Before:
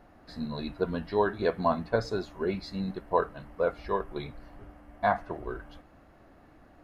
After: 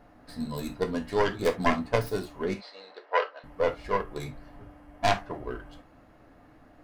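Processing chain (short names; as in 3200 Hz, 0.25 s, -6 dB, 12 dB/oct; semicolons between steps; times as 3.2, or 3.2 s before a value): tracing distortion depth 0.4 ms; 2.54–3.44 elliptic band-pass 490–4900 Hz, stop band 50 dB; non-linear reverb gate 90 ms falling, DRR 5.5 dB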